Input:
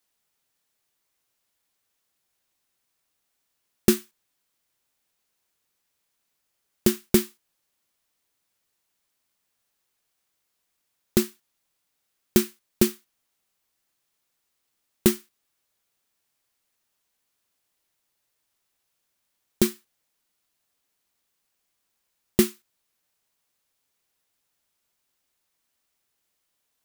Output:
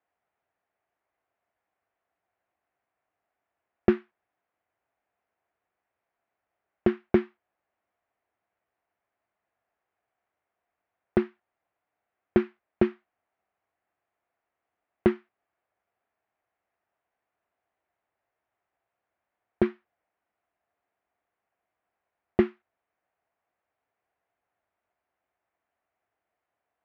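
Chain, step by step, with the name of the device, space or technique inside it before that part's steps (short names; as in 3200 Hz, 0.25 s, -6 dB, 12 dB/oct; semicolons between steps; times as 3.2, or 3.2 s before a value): bass cabinet (speaker cabinet 62–2100 Hz, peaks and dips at 150 Hz -9 dB, 240 Hz -5 dB, 700 Hz +10 dB)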